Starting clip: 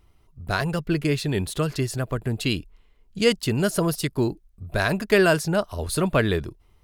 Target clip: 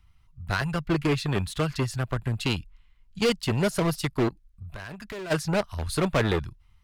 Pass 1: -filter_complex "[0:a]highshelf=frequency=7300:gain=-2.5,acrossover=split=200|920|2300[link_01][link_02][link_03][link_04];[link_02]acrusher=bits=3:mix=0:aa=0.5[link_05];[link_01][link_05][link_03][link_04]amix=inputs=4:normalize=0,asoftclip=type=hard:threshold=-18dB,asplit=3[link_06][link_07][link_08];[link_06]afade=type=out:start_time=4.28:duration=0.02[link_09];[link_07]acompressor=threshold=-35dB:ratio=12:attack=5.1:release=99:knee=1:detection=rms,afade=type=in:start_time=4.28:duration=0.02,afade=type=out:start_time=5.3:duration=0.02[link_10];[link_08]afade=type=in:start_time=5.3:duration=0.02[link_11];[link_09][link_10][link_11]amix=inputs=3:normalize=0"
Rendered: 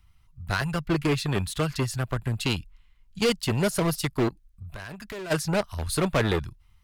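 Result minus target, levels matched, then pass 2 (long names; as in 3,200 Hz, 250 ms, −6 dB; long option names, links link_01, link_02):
8,000 Hz band +3.5 dB
-filter_complex "[0:a]highshelf=frequency=7300:gain=-9.5,acrossover=split=200|920|2300[link_01][link_02][link_03][link_04];[link_02]acrusher=bits=3:mix=0:aa=0.5[link_05];[link_01][link_05][link_03][link_04]amix=inputs=4:normalize=0,asoftclip=type=hard:threshold=-18dB,asplit=3[link_06][link_07][link_08];[link_06]afade=type=out:start_time=4.28:duration=0.02[link_09];[link_07]acompressor=threshold=-35dB:ratio=12:attack=5.1:release=99:knee=1:detection=rms,afade=type=in:start_time=4.28:duration=0.02,afade=type=out:start_time=5.3:duration=0.02[link_10];[link_08]afade=type=in:start_time=5.3:duration=0.02[link_11];[link_09][link_10][link_11]amix=inputs=3:normalize=0"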